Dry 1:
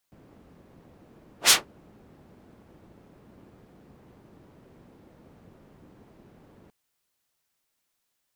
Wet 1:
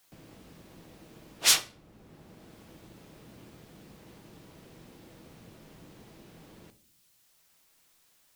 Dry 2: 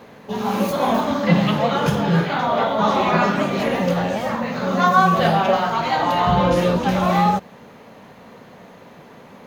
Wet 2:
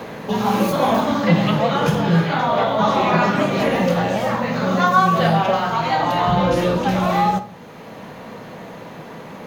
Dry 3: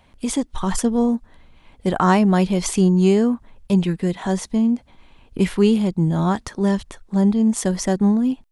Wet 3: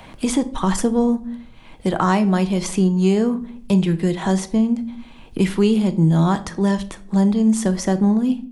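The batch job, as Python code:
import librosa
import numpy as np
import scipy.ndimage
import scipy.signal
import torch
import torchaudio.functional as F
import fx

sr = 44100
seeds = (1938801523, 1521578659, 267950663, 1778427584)

y = fx.rider(x, sr, range_db=4, speed_s=2.0)
y = fx.room_shoebox(y, sr, seeds[0], volume_m3=510.0, walls='furnished', distance_m=0.63)
y = fx.band_squash(y, sr, depth_pct=40)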